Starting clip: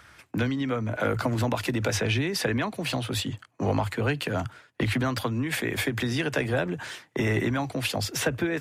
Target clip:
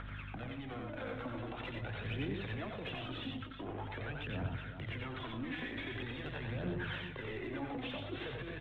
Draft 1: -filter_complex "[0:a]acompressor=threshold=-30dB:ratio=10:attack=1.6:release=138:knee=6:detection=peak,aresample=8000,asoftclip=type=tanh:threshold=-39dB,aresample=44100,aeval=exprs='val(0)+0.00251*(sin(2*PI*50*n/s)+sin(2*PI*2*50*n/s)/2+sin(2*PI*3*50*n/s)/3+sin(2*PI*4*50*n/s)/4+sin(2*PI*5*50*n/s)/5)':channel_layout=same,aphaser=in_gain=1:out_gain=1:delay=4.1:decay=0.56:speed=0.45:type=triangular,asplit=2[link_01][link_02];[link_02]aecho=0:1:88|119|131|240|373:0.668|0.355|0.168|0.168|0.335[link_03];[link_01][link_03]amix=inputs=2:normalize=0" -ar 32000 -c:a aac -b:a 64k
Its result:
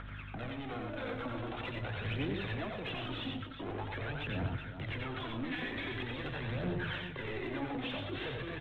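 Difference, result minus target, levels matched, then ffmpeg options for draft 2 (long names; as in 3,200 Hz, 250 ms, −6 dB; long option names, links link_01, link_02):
downward compressor: peak gain reduction −7 dB
-filter_complex "[0:a]acompressor=threshold=-37.5dB:ratio=10:attack=1.6:release=138:knee=6:detection=peak,aresample=8000,asoftclip=type=tanh:threshold=-39dB,aresample=44100,aeval=exprs='val(0)+0.00251*(sin(2*PI*50*n/s)+sin(2*PI*2*50*n/s)/2+sin(2*PI*3*50*n/s)/3+sin(2*PI*4*50*n/s)/4+sin(2*PI*5*50*n/s)/5)':channel_layout=same,aphaser=in_gain=1:out_gain=1:delay=4.1:decay=0.56:speed=0.45:type=triangular,asplit=2[link_01][link_02];[link_02]aecho=0:1:88|119|131|240|373:0.668|0.355|0.168|0.168|0.335[link_03];[link_01][link_03]amix=inputs=2:normalize=0" -ar 32000 -c:a aac -b:a 64k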